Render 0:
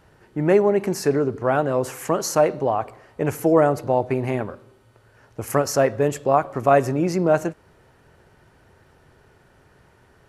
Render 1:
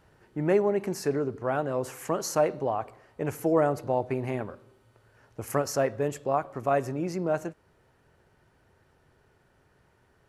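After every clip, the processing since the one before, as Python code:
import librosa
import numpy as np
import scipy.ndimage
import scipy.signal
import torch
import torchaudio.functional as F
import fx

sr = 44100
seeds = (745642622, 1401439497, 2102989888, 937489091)

y = fx.rider(x, sr, range_db=5, speed_s=2.0)
y = y * 10.0 ** (-8.5 / 20.0)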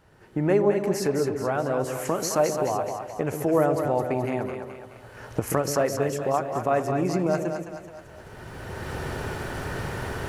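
y = fx.recorder_agc(x, sr, target_db=-19.0, rise_db_per_s=19.0, max_gain_db=30)
y = fx.echo_split(y, sr, split_hz=560.0, low_ms=131, high_ms=213, feedback_pct=52, wet_db=-6.0)
y = y * 10.0 ** (1.5 / 20.0)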